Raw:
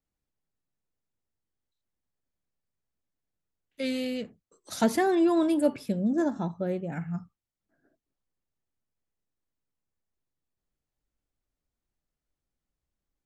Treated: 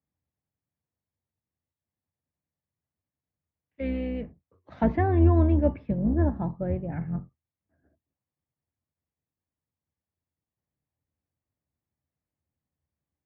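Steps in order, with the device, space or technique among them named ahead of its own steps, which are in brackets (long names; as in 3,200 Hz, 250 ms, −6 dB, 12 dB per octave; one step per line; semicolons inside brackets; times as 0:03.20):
sub-octave bass pedal (sub-octave generator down 2 octaves, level +1 dB; loudspeaker in its box 71–2,100 Hz, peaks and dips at 84 Hz +8 dB, 140 Hz +4 dB, 400 Hz −4 dB, 1,400 Hz −7 dB)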